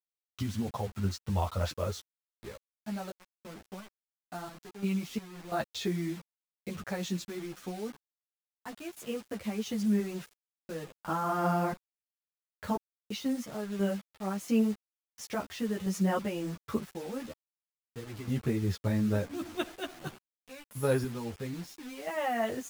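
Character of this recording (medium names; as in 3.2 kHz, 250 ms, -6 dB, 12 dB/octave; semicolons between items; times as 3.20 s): random-step tremolo 2.9 Hz, depth 100%; a quantiser's noise floor 8-bit, dither none; a shimmering, thickened sound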